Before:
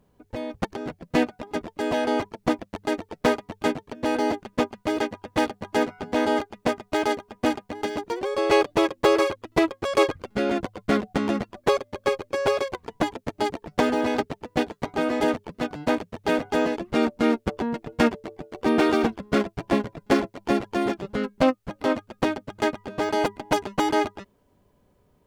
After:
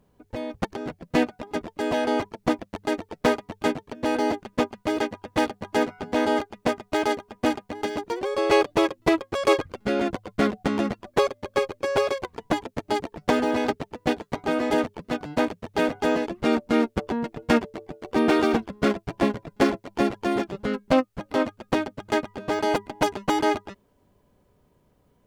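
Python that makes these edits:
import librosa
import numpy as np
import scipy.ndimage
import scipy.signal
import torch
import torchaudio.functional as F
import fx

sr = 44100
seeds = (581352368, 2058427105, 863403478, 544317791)

y = fx.edit(x, sr, fx.cut(start_s=9.0, length_s=0.5), tone=tone)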